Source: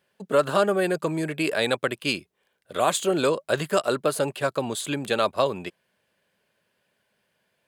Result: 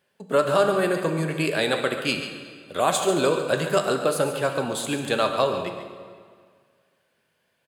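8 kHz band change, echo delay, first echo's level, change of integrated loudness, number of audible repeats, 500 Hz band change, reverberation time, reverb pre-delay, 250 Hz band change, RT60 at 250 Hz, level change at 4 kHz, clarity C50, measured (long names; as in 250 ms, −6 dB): +1.0 dB, 140 ms, −11.0 dB, +1.0 dB, 1, +1.5 dB, 1.9 s, 7 ms, +1.0 dB, 1.9 s, +1.5 dB, 5.5 dB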